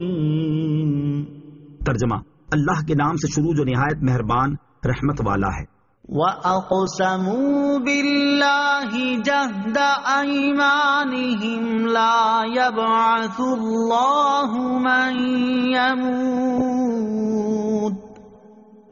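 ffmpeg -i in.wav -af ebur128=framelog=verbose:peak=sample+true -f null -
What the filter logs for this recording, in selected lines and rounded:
Integrated loudness:
  I:         -20.0 LUFS
  Threshold: -30.4 LUFS
Loudness range:
  LRA:         3.5 LU
  Threshold: -40.0 LUFS
  LRA low:   -22.1 LUFS
  LRA high:  -18.6 LUFS
Sample peak:
  Peak:       -7.4 dBFS
True peak:
  Peak:       -7.4 dBFS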